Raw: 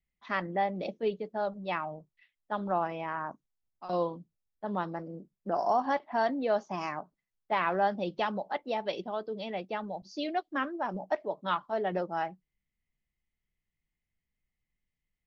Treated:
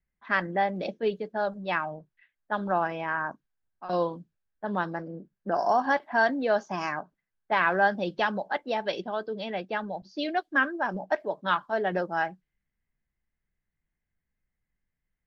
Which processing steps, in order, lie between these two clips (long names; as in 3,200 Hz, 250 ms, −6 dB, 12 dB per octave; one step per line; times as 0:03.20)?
high-shelf EQ 5,400 Hz +5.5 dB
low-pass that shuts in the quiet parts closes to 1,700 Hz, open at −27.5 dBFS
parametric band 1,600 Hz +11 dB 0.21 octaves
level +3 dB